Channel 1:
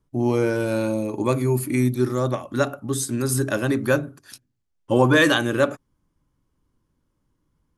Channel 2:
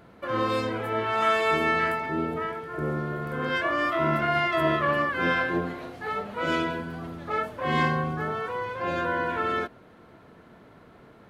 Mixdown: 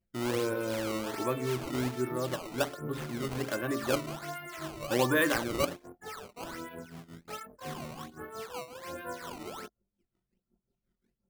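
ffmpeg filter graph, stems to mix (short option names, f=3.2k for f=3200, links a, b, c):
-filter_complex "[0:a]bass=f=250:g=-6,treble=f=4k:g=-9,volume=-9dB[a];[1:a]acompressor=threshold=-26dB:ratio=12,acrossover=split=1400[b][c];[b]aeval=exprs='val(0)*(1-0.7/2+0.7/2*cos(2*PI*5.6*n/s))':c=same[d];[c]aeval=exprs='val(0)*(1-0.7/2-0.7/2*cos(2*PI*5.6*n/s))':c=same[e];[d][e]amix=inputs=2:normalize=0,flanger=delay=19:depth=3.5:speed=0.42,volume=-4.5dB[f];[a][f]amix=inputs=2:normalize=0,anlmdn=0.0251,acrusher=samples=15:mix=1:aa=0.000001:lfo=1:lforange=24:lforate=1.3"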